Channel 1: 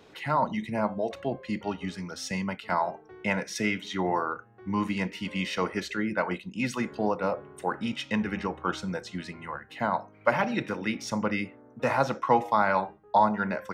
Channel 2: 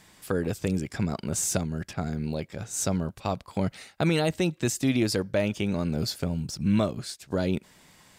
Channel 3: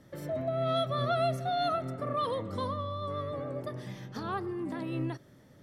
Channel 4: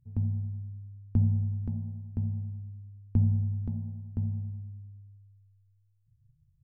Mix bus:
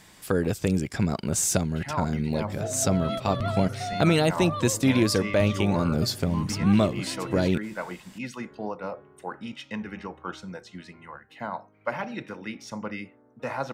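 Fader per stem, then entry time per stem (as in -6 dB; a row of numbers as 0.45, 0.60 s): -6.0, +3.0, -2.5, -7.5 dB; 1.60, 0.00, 2.35, 2.25 s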